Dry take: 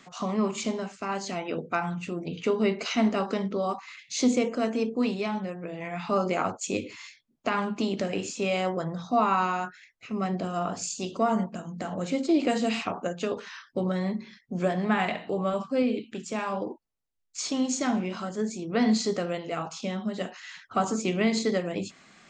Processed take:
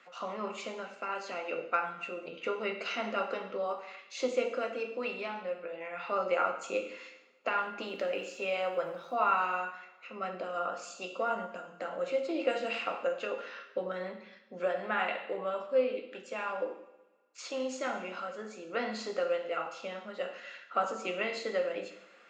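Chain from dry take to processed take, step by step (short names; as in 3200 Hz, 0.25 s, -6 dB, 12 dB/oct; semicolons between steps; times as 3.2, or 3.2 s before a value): weighting filter A; harmonic-percussive split percussive +3 dB; tone controls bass -5 dB, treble -12 dB; small resonant body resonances 520/1400/2700 Hz, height 11 dB, ringing for 45 ms; 7.81–9.58 crackle 450/s -52 dBFS; two-slope reverb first 0.8 s, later 2.2 s, from -21 dB, DRR 5 dB; gain -7.5 dB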